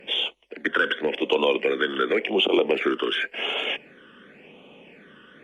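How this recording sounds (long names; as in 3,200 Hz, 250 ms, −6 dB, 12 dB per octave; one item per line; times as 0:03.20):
phaser sweep stages 12, 0.91 Hz, lowest notch 730–1,700 Hz
MP3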